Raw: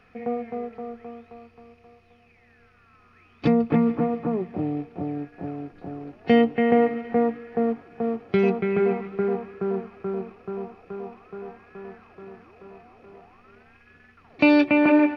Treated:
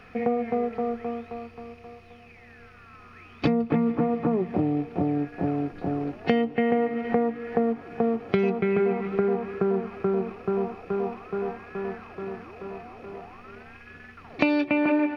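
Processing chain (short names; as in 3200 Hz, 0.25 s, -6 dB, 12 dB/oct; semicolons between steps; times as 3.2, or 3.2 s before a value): compressor 5:1, threshold -29 dBFS, peak gain reduction 15 dB; gain +8 dB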